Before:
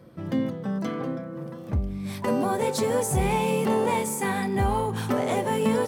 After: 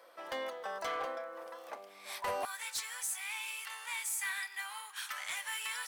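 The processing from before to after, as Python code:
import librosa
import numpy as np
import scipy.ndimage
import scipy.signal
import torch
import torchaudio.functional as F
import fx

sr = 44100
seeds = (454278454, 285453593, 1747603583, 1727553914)

y = fx.highpass(x, sr, hz=fx.steps((0.0, 630.0), (2.45, 1500.0)), slope=24)
y = fx.rider(y, sr, range_db=5, speed_s=2.0)
y = np.clip(10.0 ** (28.0 / 20.0) * y, -1.0, 1.0) / 10.0 ** (28.0 / 20.0)
y = y * librosa.db_to_amplitude(-3.0)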